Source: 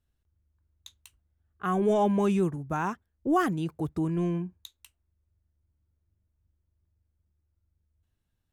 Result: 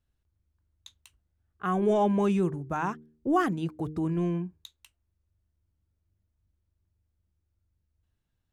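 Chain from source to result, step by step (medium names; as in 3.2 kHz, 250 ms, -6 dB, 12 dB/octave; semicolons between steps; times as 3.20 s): treble shelf 9.7 kHz -9.5 dB; de-hum 77.06 Hz, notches 6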